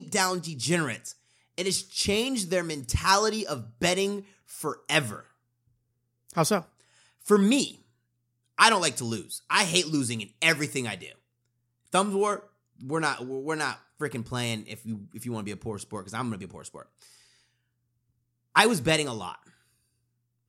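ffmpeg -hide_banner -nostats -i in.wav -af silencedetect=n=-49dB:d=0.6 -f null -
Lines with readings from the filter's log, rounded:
silence_start: 5.26
silence_end: 6.29 | silence_duration: 1.02
silence_start: 7.81
silence_end: 8.58 | silence_duration: 0.77
silence_start: 11.15
silence_end: 11.87 | silence_duration: 0.72
silence_start: 17.25
silence_end: 18.55 | silence_duration: 1.30
silence_start: 19.50
silence_end: 20.48 | silence_duration: 0.99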